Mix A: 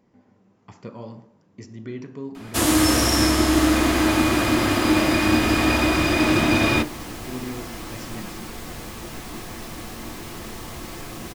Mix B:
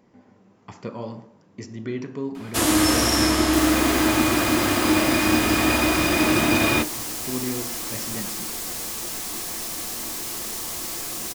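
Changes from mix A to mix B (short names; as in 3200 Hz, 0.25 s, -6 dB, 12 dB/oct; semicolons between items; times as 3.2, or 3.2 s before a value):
speech +5.5 dB; second sound: add tone controls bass -5 dB, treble +13 dB; master: add low shelf 180 Hz -4.5 dB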